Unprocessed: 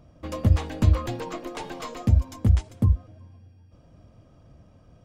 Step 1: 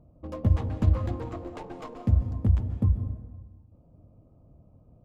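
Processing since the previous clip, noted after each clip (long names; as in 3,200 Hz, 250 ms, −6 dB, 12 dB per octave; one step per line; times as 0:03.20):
adaptive Wiener filter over 25 samples
high-shelf EQ 2,700 Hz −11 dB
convolution reverb RT60 1.3 s, pre-delay 123 ms, DRR 9 dB
level −3 dB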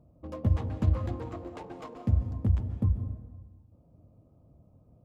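high-pass filter 48 Hz
level −2.5 dB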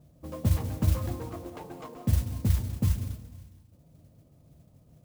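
parametric band 150 Hz +8 dB 0.24 octaves
noise that follows the level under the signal 19 dB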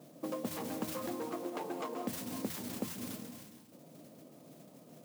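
high-pass filter 220 Hz 24 dB per octave
downward compressor 6 to 1, threshold −46 dBFS, peak gain reduction 16.5 dB
level +10 dB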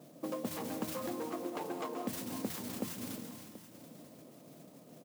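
repeating echo 732 ms, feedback 35%, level −15 dB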